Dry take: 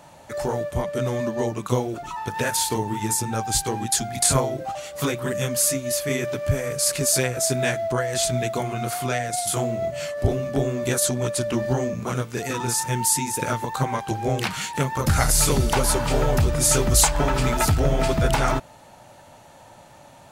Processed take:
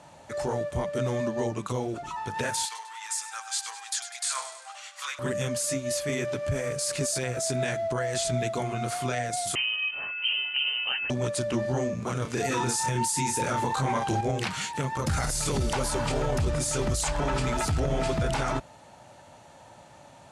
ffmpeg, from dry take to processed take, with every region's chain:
ffmpeg -i in.wav -filter_complex "[0:a]asettb=1/sr,asplit=3[link_01][link_02][link_03];[link_01]atrim=end=2.654[link_04];[link_02]atrim=start=2.65:end=5.19,asetpts=PTS-STARTPTS,afade=type=in:duration=0.004:curve=qsin,afade=type=out:start_time=2.536:duration=0.004:curve=qsin,highpass=frequency=1100:width=0.5412,highpass=frequency=1100:width=1.3066,highshelf=frequency=12000:gain=-11,aecho=1:1:99|198|297|396|495|594:0.224|0.121|0.0653|0.0353|0.019|0.0103,atrim=end_sample=112014[link_05];[link_03]atrim=start=5.186[link_06];[link_04][link_05]acrossfade=duration=0.004:curve1=hsin:curve2=qsin[link_07];[link_07][link_06]acrossfade=duration=0.004:curve1=qsin:curve2=hsin,asettb=1/sr,asplit=3[link_08][link_09][link_10];[link_08]atrim=end=9.554[link_11];[link_09]atrim=start=9.55:end=11.1,asetpts=PTS-STARTPTS,afade=type=in:duration=0.004:curve=qsin,afade=type=out:start_time=1.546:duration=0.004:curve=qsin,aeval=exprs='sgn(val(0))*max(abs(val(0))-0.00447,0)':channel_layout=same,lowpass=frequency=2700:width_type=q:width=0.5098,lowpass=frequency=2700:width_type=q:width=0.6013,lowpass=frequency=2700:width_type=q:width=0.9,lowpass=frequency=2700:width_type=q:width=2.563,afreqshift=-3200[link_12];[link_10]atrim=start=11.096[link_13];[link_11][link_12]acrossfade=duration=0.004:curve1=hsin:curve2=qsin[link_14];[link_14][link_13]acrossfade=duration=0.004:curve1=qsin:curve2=hsin,asettb=1/sr,asplit=3[link_15][link_16][link_17];[link_15]atrim=end=12.224[link_18];[link_16]atrim=start=12.22:end=14.21,asetpts=PTS-STARTPTS,afade=type=in:duration=0.004:curve=qsin,afade=type=out:start_time=1.986:duration=0.004:curve=qsin,asplit=2[link_19][link_20];[link_20]adelay=30,volume=-7dB[link_21];[link_19][link_21]amix=inputs=2:normalize=0,atrim=end_sample=87759,acontrast=52[link_22];[link_17]atrim=start=14.206[link_23];[link_18][link_22]acrossfade=duration=0.004:curve1=hsin:curve2=qsin[link_24];[link_24][link_23]acrossfade=duration=0.004:curve1=qsin:curve2=hsin,highpass=41,alimiter=limit=-15.5dB:level=0:latency=1:release=22,lowpass=frequency=10000:width=0.5412,lowpass=frequency=10000:width=1.3066,volume=-3dB" out.wav

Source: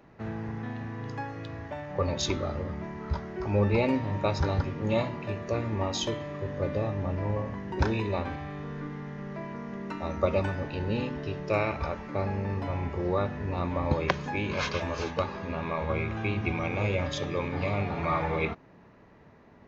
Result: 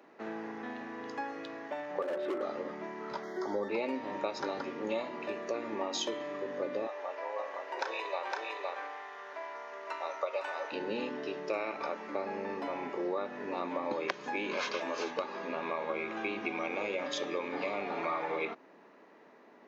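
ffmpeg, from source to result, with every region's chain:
ffmpeg -i in.wav -filter_complex "[0:a]asettb=1/sr,asplit=3[link_01][link_02][link_03];[link_01]atrim=end=2.024[link_04];[link_02]atrim=start=2.02:end=2.42,asetpts=PTS-STARTPTS,afade=type=in:duration=0.004:curve=qsin,afade=type=out:start_time=0.396:duration=0.004:curve=qsin,highpass=160,equalizer=frequency=250:width_type=q:width=4:gain=-7,equalizer=frequency=360:width_type=q:width=4:gain=8,equalizer=frequency=570:width_type=q:width=4:gain=9,equalizer=frequency=1000:width_type=q:width=4:gain=-8,equalizer=frequency=1400:width_type=q:width=4:gain=3,lowpass=frequency=2000:width=0.5412,lowpass=frequency=2000:width=1.3066,volume=27.5dB,asoftclip=hard,volume=-27.5dB[link_05];[link_03]atrim=start=2.416[link_06];[link_04][link_05]acrossfade=duration=0.004:curve1=hsin:curve2=qsin[link_07];[link_07][link_06]acrossfade=duration=0.004:curve1=qsin:curve2=hsin,asettb=1/sr,asplit=3[link_08][link_09][link_10];[link_08]atrim=end=3.234[link_11];[link_09]atrim=start=3.23:end=3.69,asetpts=PTS-STARTPTS,afade=type=in:duration=0.004:curve=qsin,afade=type=out:start_time=0.456:duration=0.004:curve=qsin,asuperstop=centerf=2600:order=20:qfactor=2.9,highshelf=frequency=5800:gain=12[link_12];[link_10]atrim=start=3.686[link_13];[link_11][link_12]acrossfade=duration=0.004:curve1=hsin:curve2=qsin[link_14];[link_14][link_13]acrossfade=duration=0.004:curve1=qsin:curve2=hsin,asettb=1/sr,asplit=3[link_15][link_16][link_17];[link_15]atrim=end=6.874[link_18];[link_16]atrim=start=6.87:end=10.72,asetpts=PTS-STARTPTS,afade=type=in:duration=0.004:curve=qsin,afade=type=out:start_time=3.846:duration=0.004:curve=qsin,highpass=frequency=540:width=0.5412,highpass=frequency=540:width=1.3066,aecho=1:1:510:0.668,atrim=end_sample=169785[link_19];[link_17]atrim=start=10.716[link_20];[link_18][link_19]acrossfade=duration=0.004:curve1=hsin:curve2=qsin[link_21];[link_21][link_20]acrossfade=duration=0.004:curve1=qsin:curve2=hsin,highpass=frequency=270:width=0.5412,highpass=frequency=270:width=1.3066,acompressor=threshold=-31dB:ratio=4" out.wav

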